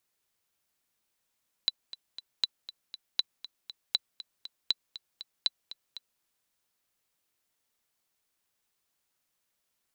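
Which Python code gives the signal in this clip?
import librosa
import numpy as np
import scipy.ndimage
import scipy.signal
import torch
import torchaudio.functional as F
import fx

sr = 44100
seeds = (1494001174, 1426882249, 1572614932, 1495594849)

y = fx.click_track(sr, bpm=238, beats=3, bars=6, hz=3980.0, accent_db=16.0, level_db=-11.5)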